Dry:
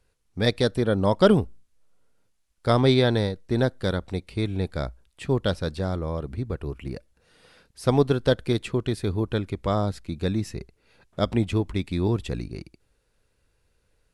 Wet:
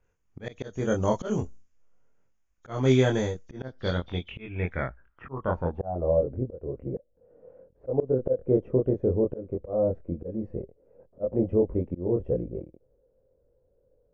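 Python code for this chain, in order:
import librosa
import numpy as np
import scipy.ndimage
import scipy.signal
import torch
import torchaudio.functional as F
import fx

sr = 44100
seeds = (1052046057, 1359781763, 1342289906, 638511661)

y = fx.freq_compress(x, sr, knee_hz=3000.0, ratio=1.5)
y = fx.peak_eq(y, sr, hz=4000.0, db=-15.0, octaves=0.32)
y = fx.doubler(y, sr, ms=23.0, db=-3.0)
y = fx.filter_sweep_lowpass(y, sr, from_hz=6700.0, to_hz=530.0, start_s=3.44, end_s=6.23, q=6.7)
y = fx.auto_swell(y, sr, attack_ms=267.0)
y = fx.env_lowpass(y, sr, base_hz=2400.0, full_db=-18.0)
y = y * 10.0 ** (-4.0 / 20.0)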